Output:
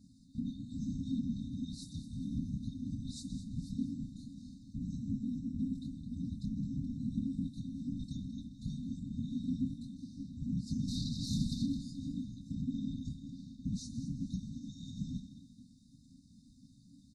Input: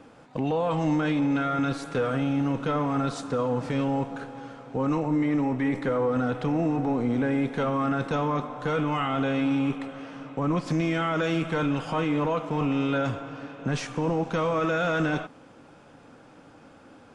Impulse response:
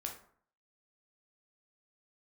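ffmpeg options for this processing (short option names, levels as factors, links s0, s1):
-filter_complex "[0:a]flanger=delay=17:depth=6.2:speed=1.8,alimiter=level_in=1.19:limit=0.0631:level=0:latency=1:release=320,volume=0.841,asettb=1/sr,asplit=3[s0][s1][s2];[s0]atrim=end=10.884[s3];[s1]atrim=start=10.88:end=11.66,asetpts=PTS-STARTPTS,afade=t=in:d=0.004:c=qsin,afade=t=out:st=0.776:d=0.004:c=qsin,aeval=exprs='0.0562*sin(PI/2*2.51*val(0)/0.0562)':c=same[s4];[s2]atrim=start=11.656[s5];[s3][s4]acrossfade=d=0.004:c1=hsin:c2=qsin[s6];[s6][s5]acrossfade=d=0.004:c1=qsin:c2=hsin,asplit=2[s7][s8];[s8]adelay=157.4,volume=0.178,highshelf=f=4000:g=-3.54[s9];[s7][s9]amix=inputs=2:normalize=0,afftfilt=real='hypot(re,im)*cos(2*PI*random(0))':imag='hypot(re,im)*sin(2*PI*random(1))':win_size=512:overlap=0.75,asplit=2[s10][s11];[s11]asplit=4[s12][s13][s14][s15];[s12]adelay=213,afreqshift=47,volume=0.237[s16];[s13]adelay=426,afreqshift=94,volume=0.0902[s17];[s14]adelay=639,afreqshift=141,volume=0.0343[s18];[s15]adelay=852,afreqshift=188,volume=0.013[s19];[s16][s17][s18][s19]amix=inputs=4:normalize=0[s20];[s10][s20]amix=inputs=2:normalize=0,afftfilt=real='re*(1-between(b*sr/4096,290,3600))':imag='im*(1-between(b*sr/4096,290,3600))':win_size=4096:overlap=0.75,volume=1.78"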